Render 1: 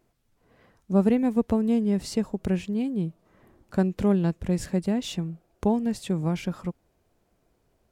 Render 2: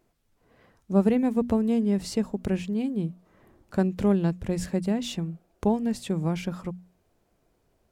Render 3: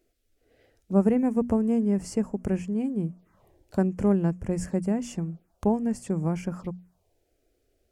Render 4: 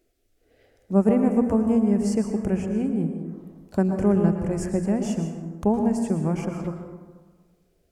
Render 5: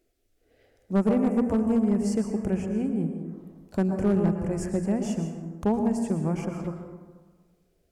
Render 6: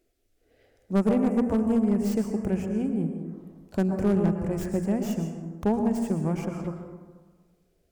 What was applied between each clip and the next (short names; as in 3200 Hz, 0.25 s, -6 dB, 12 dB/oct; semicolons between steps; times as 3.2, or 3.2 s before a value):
notches 60/120/180/240 Hz
envelope phaser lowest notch 160 Hz, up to 3800 Hz, full sweep at -28 dBFS
plate-style reverb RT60 1.4 s, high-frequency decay 0.45×, pre-delay 0.1 s, DRR 4.5 dB; gain +2 dB
hard clip -14 dBFS, distortion -18 dB; gain -2.5 dB
tracing distortion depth 0.11 ms